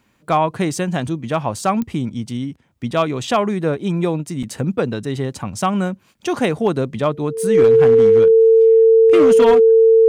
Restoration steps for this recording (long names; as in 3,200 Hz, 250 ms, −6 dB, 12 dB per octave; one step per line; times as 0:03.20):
clipped peaks rebuilt −6.5 dBFS
click removal
notch filter 450 Hz, Q 30
repair the gap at 0:04.43, 5.2 ms